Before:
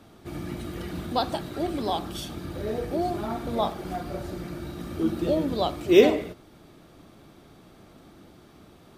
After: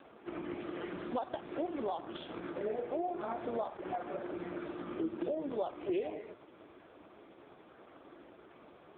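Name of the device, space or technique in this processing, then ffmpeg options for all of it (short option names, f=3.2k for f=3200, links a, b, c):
voicemail: -af "highpass=360,lowpass=2.7k,acompressor=threshold=-35dB:ratio=8,volume=3dB" -ar 8000 -c:a libopencore_amrnb -b:a 4750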